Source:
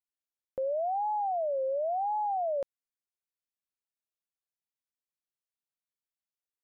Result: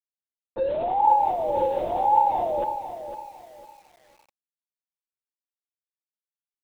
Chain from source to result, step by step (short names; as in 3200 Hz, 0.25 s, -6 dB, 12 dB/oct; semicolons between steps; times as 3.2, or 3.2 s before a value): on a send: dark delay 0.115 s, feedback 33%, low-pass 430 Hz, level -6 dB; on the sum: companded quantiser 6-bit; graphic EQ 125/250/500/1000 Hz +8/-7/-11/+4 dB; LPC vocoder at 8 kHz whisper; small resonant body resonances 350/500/890 Hz, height 16 dB, ringing for 50 ms; lo-fi delay 0.504 s, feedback 35%, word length 9-bit, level -10 dB; gain +5.5 dB